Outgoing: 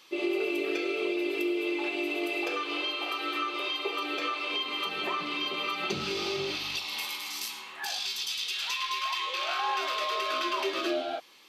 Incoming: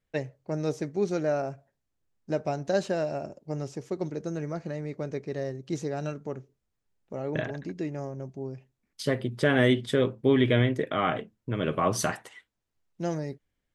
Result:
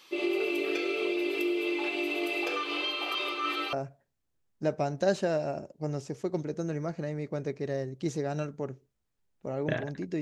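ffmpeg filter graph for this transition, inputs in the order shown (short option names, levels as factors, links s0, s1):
-filter_complex "[0:a]apad=whole_dur=10.21,atrim=end=10.21,asplit=2[s0][s1];[s0]atrim=end=3.152[s2];[s1]atrim=start=3.148:end=3.732,asetpts=PTS-STARTPTS,areverse[s3];[1:a]atrim=start=1.398:end=7.88[s4];[s2][s3]acrossfade=d=0.004:c1=hsin:c2=hsin[s5];[s5][s4]acrossfade=d=0.004:c1=hsin:c2=hsin"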